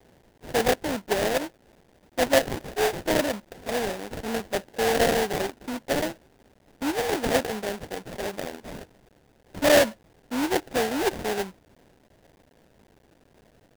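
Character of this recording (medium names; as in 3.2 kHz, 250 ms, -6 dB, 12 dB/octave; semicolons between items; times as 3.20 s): a quantiser's noise floor 10-bit, dither triangular; tremolo saw down 1.8 Hz, depth 30%; aliases and images of a low sample rate 1.2 kHz, jitter 20%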